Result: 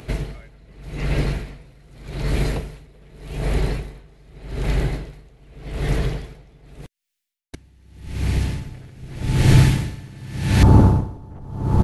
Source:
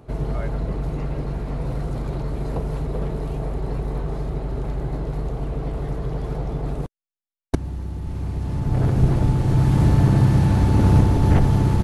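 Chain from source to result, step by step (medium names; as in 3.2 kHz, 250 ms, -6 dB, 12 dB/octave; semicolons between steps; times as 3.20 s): resonant high shelf 1.5 kHz +10 dB, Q 1.5, from 10.63 s -6 dB; logarithmic tremolo 0.84 Hz, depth 30 dB; trim +6.5 dB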